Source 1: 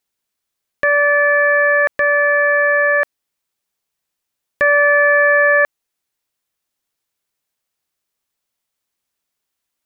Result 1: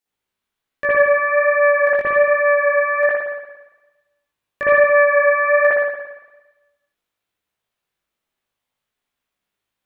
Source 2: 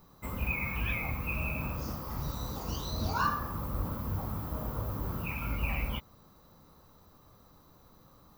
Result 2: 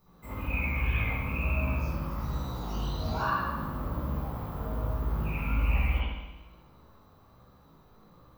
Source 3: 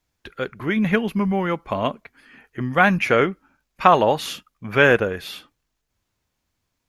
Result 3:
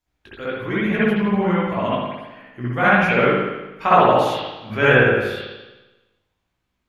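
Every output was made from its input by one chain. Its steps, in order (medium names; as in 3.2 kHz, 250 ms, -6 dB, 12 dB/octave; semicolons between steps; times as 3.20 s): spring tank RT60 1.1 s, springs 57 ms, chirp 30 ms, DRR -8.5 dB; chorus 1.2 Hz, delay 15.5 ms, depth 4.5 ms; trim -4 dB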